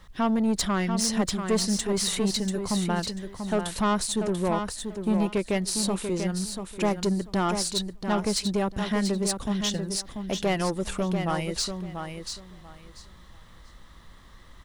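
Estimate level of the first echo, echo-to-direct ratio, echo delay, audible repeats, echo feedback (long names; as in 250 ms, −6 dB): −7.0 dB, −7.0 dB, 689 ms, 3, 20%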